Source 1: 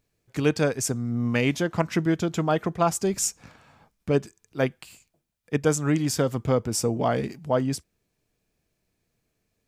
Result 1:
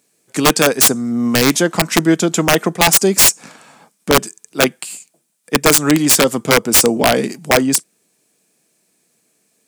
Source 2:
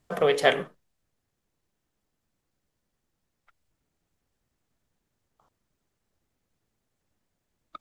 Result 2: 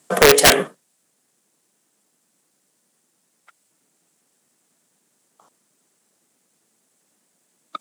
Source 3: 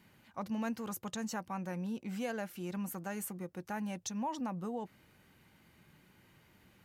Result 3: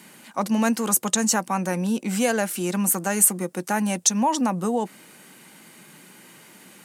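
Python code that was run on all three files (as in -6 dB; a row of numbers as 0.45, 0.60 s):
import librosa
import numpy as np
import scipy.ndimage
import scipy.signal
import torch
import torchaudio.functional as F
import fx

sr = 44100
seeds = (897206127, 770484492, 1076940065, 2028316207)

y = scipy.signal.sosfilt(scipy.signal.butter(4, 180.0, 'highpass', fs=sr, output='sos'), x)
y = fx.peak_eq(y, sr, hz=8800.0, db=13.5, octaves=0.97)
y = (np.mod(10.0 ** (14.0 / 20.0) * y + 1.0, 2.0) - 1.0) / 10.0 ** (14.0 / 20.0)
y = y * 10.0 ** (-3 / 20.0) / np.max(np.abs(y))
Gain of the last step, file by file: +11.0, +11.0, +15.5 dB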